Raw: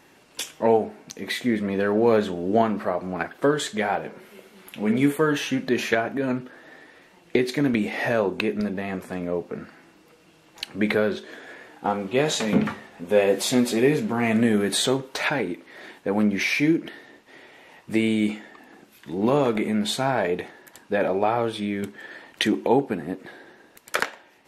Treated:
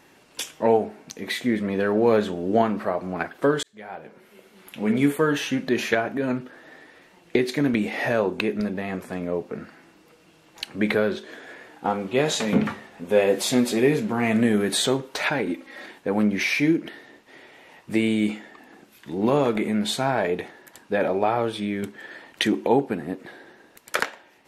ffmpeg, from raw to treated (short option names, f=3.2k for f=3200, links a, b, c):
-filter_complex "[0:a]asettb=1/sr,asplit=3[a][b][c];[a]atrim=end=15.464[d];[b]atrim=start=15.46:end=15.86,asetpts=PTS-STARTPTS,afade=t=in:d=0.004:c=qsin,afade=t=out:st=0.396:d=0.004:c=qsin,aecho=1:1:3.7:0.9,atrim=end_sample=17640[e];[c]atrim=start=15.856[f];[d][e]acrossfade=d=0.004:c1=hsin:c2=qsin[g];[g][f]acrossfade=d=0.004:c1=qsin:c2=hsin,asplit=2[h][i];[h]atrim=end=3.63,asetpts=PTS-STARTPTS,afade=t=out:st=3.626:d=0.004:c=hsin[j];[i]atrim=start=3.63,asetpts=PTS-STARTPTS,afade=t=in:d=1.21[k];[j][k]concat=n=2:v=0:a=1"